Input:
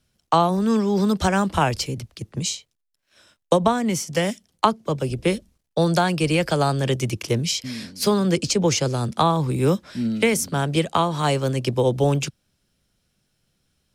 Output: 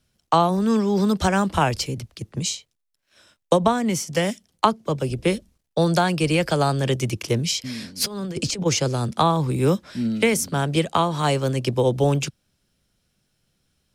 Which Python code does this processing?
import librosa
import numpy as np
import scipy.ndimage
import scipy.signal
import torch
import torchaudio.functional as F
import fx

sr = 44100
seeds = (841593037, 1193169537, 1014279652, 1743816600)

y = fx.over_compress(x, sr, threshold_db=-24.0, ratio=-0.5, at=(7.96, 8.65), fade=0.02)